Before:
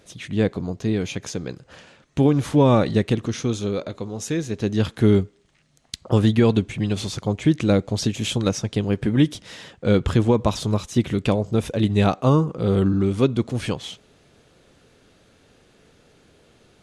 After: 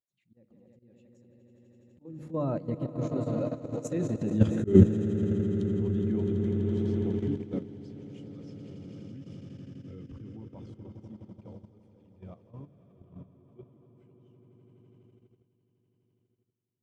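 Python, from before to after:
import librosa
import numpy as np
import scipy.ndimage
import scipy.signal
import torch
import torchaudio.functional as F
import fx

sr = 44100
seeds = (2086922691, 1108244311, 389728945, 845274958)

p1 = fx.doppler_pass(x, sr, speed_mps=32, closest_m=17.0, pass_at_s=4.36)
p2 = fx.peak_eq(p1, sr, hz=3800.0, db=-3.0, octaves=0.68)
p3 = fx.notch(p2, sr, hz=440.0, q=12.0)
p4 = p3 + fx.echo_swell(p3, sr, ms=83, loudest=8, wet_db=-9.5, dry=0)
p5 = fx.transient(p4, sr, attack_db=-7, sustain_db=-1)
p6 = fx.hum_notches(p5, sr, base_hz=50, count=7)
p7 = fx.auto_swell(p6, sr, attack_ms=121.0)
p8 = fx.level_steps(p7, sr, step_db=10)
p9 = fx.spectral_expand(p8, sr, expansion=1.5)
y = p9 * 10.0 ** (6.0 / 20.0)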